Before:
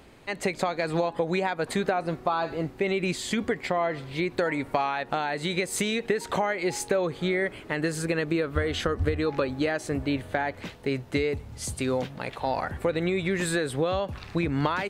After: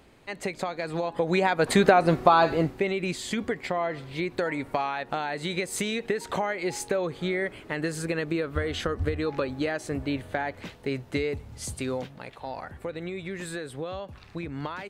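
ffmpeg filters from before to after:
ffmpeg -i in.wav -af "volume=8dB,afade=type=in:start_time=1:duration=0.91:silence=0.251189,afade=type=out:start_time=2.43:duration=0.47:silence=0.316228,afade=type=out:start_time=11.71:duration=0.61:silence=0.473151" out.wav

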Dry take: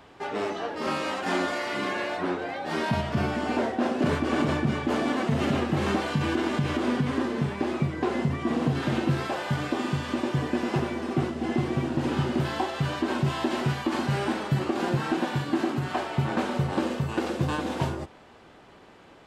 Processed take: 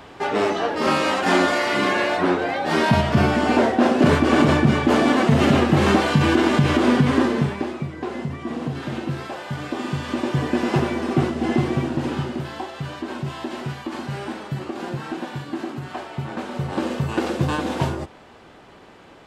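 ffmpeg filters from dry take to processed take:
ffmpeg -i in.wav -af "volume=25.5dB,afade=type=out:start_time=7.24:duration=0.5:silence=0.281838,afade=type=in:start_time=9.5:duration=1.25:silence=0.375837,afade=type=out:start_time=11.53:duration=0.9:silence=0.334965,afade=type=in:start_time=16.46:duration=0.62:silence=0.398107" out.wav

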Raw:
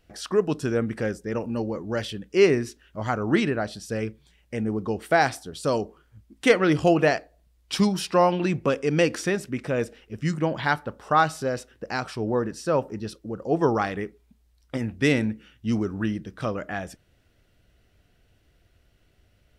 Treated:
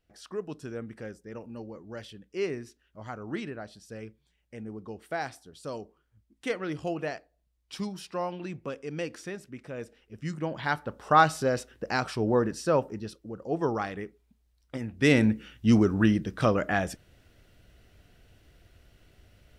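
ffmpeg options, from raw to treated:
ffmpeg -i in.wav -af "volume=11.5dB,afade=type=in:start_time=9.74:duration=0.88:silence=0.473151,afade=type=in:start_time=10.62:duration=0.58:silence=0.446684,afade=type=out:start_time=12.53:duration=0.63:silence=0.446684,afade=type=in:start_time=14.92:duration=0.41:silence=0.281838" out.wav

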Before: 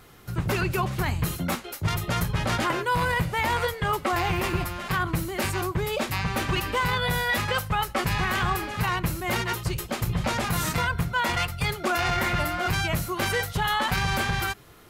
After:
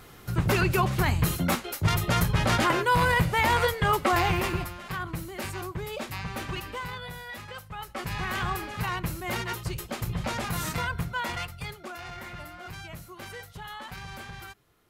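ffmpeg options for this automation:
ffmpeg -i in.wav -af "volume=12.5dB,afade=type=out:start_time=4.17:duration=0.6:silence=0.334965,afade=type=out:start_time=6.45:duration=0.71:silence=0.421697,afade=type=in:start_time=7.7:duration=0.68:silence=0.298538,afade=type=out:start_time=11.01:duration=0.93:silence=0.281838" out.wav

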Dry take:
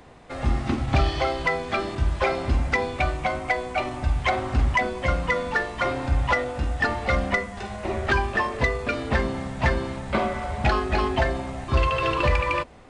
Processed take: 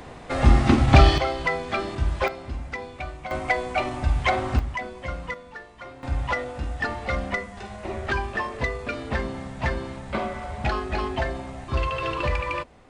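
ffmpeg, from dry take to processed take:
ffmpeg -i in.wav -af "asetnsamples=nb_out_samples=441:pad=0,asendcmd='1.18 volume volume -1dB;2.28 volume volume -10dB;3.31 volume volume 1dB;4.59 volume volume -8.5dB;5.34 volume volume -16dB;6.03 volume volume -4dB',volume=7.5dB" out.wav

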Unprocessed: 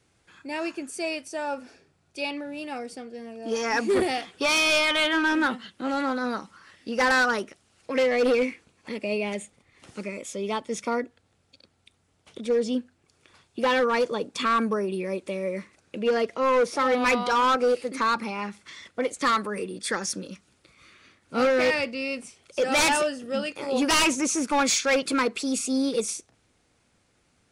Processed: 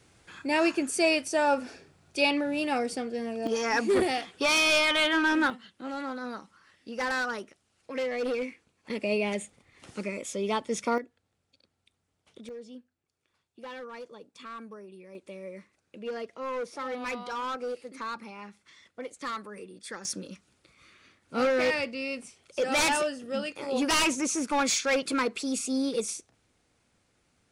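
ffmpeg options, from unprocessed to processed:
ffmpeg -i in.wav -af "asetnsamples=nb_out_samples=441:pad=0,asendcmd='3.47 volume volume -1.5dB;5.5 volume volume -8.5dB;8.9 volume volume 0dB;10.98 volume volume -10dB;12.49 volume volume -19dB;15.15 volume volume -12dB;20.05 volume volume -3.5dB',volume=6dB" out.wav

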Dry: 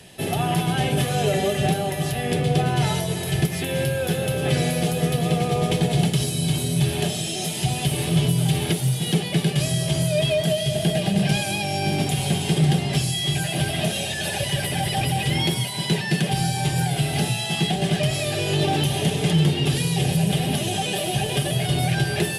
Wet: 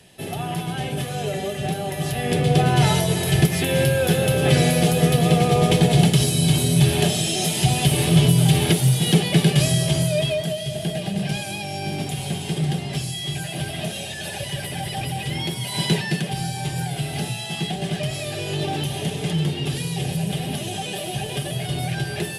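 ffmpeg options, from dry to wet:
ffmpeg -i in.wav -af "volume=12.5dB,afade=type=in:start_time=1.63:duration=1.21:silence=0.334965,afade=type=out:start_time=9.58:duration=0.93:silence=0.354813,afade=type=in:start_time=15.61:duration=0.16:silence=0.398107,afade=type=out:start_time=15.77:duration=0.48:silence=0.421697" out.wav

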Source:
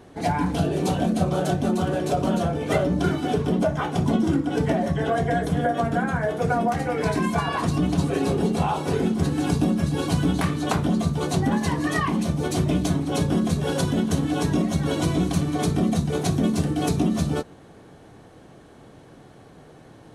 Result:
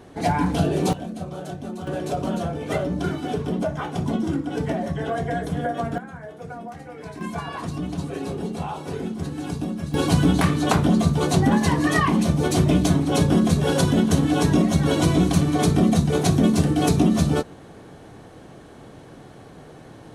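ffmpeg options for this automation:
ffmpeg -i in.wav -af "asetnsamples=nb_out_samples=441:pad=0,asendcmd='0.93 volume volume -10dB;1.87 volume volume -3dB;5.98 volume volume -13.5dB;7.21 volume volume -6.5dB;9.94 volume volume 4dB',volume=2dB" out.wav

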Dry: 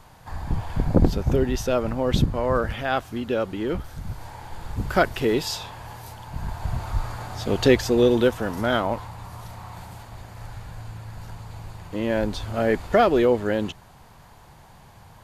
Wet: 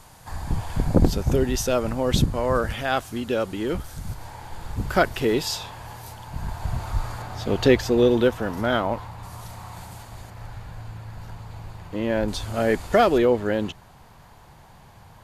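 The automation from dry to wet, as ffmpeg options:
ffmpeg -i in.wav -af "asetnsamples=nb_out_samples=441:pad=0,asendcmd='4.14 equalizer g 2.5;7.22 equalizer g -3.5;9.23 equalizer g 5.5;10.3 equalizer g -4;12.28 equalizer g 7.5;13.18 equalizer g -1.5',equalizer=frequency=9200:width_type=o:width=1.7:gain=9.5" out.wav

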